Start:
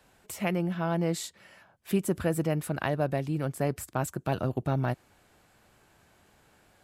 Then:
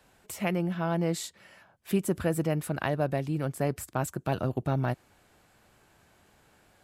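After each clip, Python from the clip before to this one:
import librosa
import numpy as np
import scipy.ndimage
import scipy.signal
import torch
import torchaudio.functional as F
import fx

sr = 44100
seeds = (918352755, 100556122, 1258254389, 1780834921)

y = x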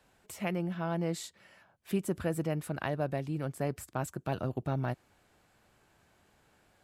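y = fx.high_shelf(x, sr, hz=11000.0, db=-4.5)
y = y * librosa.db_to_amplitude(-4.5)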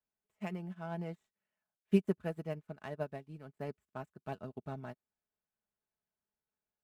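y = scipy.ndimage.median_filter(x, 9, mode='constant')
y = y + 0.46 * np.pad(y, (int(4.7 * sr / 1000.0), 0))[:len(y)]
y = fx.upward_expand(y, sr, threshold_db=-46.0, expansion=2.5)
y = y * librosa.db_to_amplitude(2.5)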